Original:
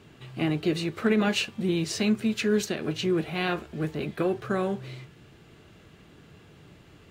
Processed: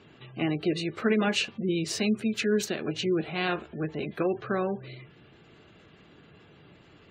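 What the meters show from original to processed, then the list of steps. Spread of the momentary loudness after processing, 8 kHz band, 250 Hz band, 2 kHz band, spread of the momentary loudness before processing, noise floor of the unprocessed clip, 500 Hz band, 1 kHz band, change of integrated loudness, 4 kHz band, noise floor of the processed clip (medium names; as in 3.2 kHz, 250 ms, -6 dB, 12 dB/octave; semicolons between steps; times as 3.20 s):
8 LU, -0.5 dB, -2.0 dB, -0.5 dB, 7 LU, -54 dBFS, -0.5 dB, -0.5 dB, -1.5 dB, -0.5 dB, -56 dBFS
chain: spectral gate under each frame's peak -30 dB strong; bass shelf 120 Hz -9 dB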